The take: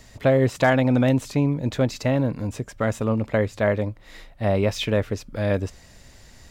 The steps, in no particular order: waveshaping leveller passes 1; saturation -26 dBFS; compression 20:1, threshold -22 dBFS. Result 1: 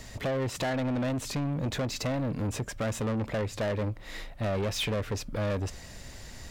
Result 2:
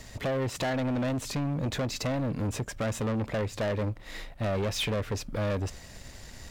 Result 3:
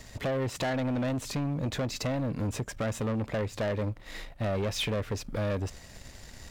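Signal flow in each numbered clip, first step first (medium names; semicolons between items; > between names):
compression > saturation > waveshaping leveller; compression > waveshaping leveller > saturation; waveshaping leveller > compression > saturation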